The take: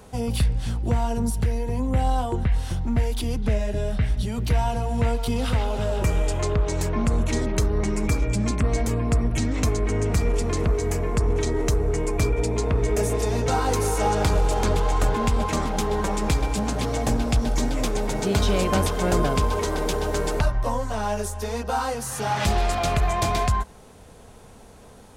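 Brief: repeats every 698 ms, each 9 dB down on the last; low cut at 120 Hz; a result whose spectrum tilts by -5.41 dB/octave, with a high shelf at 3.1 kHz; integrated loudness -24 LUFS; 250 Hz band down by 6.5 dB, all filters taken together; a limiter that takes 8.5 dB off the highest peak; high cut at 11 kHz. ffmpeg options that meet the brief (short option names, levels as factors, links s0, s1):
-af "highpass=120,lowpass=11000,equalizer=f=250:t=o:g=-8,highshelf=f=3100:g=-7.5,alimiter=limit=0.0891:level=0:latency=1,aecho=1:1:698|1396|2094|2792:0.355|0.124|0.0435|0.0152,volume=2.11"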